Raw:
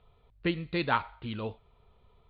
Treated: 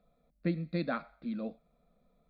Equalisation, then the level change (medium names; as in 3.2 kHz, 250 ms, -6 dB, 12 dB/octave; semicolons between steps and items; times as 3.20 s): resonant low shelf 120 Hz -8.5 dB, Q 3; high-order bell 1.4 kHz -8 dB 1.3 oct; static phaser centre 600 Hz, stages 8; 0.0 dB